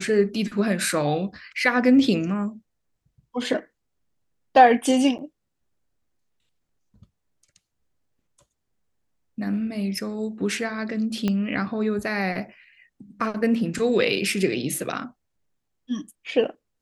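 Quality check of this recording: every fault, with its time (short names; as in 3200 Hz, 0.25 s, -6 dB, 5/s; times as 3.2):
5.18–5.19 gap 8.7 ms
11.28 pop -12 dBFS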